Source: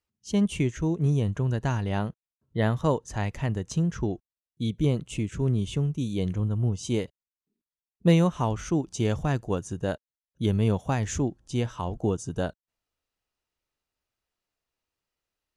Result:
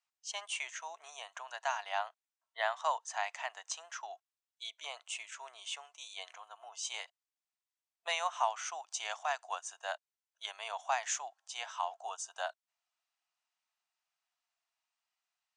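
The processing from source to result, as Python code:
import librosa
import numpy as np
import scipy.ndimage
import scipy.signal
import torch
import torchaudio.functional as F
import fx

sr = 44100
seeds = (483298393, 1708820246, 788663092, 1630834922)

y = scipy.signal.sosfilt(scipy.signal.cheby1(5, 1.0, [680.0, 8800.0], 'bandpass', fs=sr, output='sos'), x)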